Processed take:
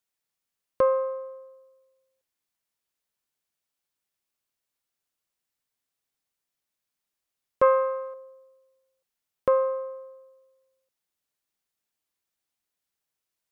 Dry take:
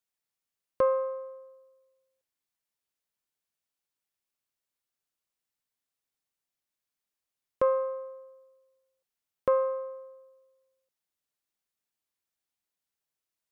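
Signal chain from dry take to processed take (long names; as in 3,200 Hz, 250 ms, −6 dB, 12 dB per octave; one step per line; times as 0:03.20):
0:07.62–0:08.14: parametric band 2,100 Hz +12.5 dB 1.9 octaves
every ending faded ahead of time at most 320 dB per second
level +3 dB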